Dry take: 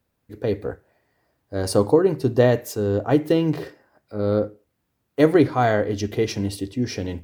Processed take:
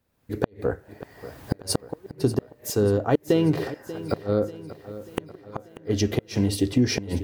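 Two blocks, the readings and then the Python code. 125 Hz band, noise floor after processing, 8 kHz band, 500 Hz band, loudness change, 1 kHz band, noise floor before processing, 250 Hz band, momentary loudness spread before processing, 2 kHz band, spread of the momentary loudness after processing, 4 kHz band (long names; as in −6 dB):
−2.0 dB, −57 dBFS, +2.5 dB, −6.0 dB, −4.5 dB, −8.0 dB, −74 dBFS, −3.0 dB, 13 LU, −6.0 dB, 18 LU, +1.0 dB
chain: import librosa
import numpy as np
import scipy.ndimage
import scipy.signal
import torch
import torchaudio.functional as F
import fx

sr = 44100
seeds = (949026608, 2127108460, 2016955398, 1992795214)

p1 = fx.recorder_agc(x, sr, target_db=-10.0, rise_db_per_s=32.0, max_gain_db=30)
p2 = fx.gate_flip(p1, sr, shuts_db=-7.0, range_db=-37)
p3 = p2 + fx.echo_feedback(p2, sr, ms=588, feedback_pct=53, wet_db=-15.0, dry=0)
y = F.gain(torch.from_numpy(p3), -2.0).numpy()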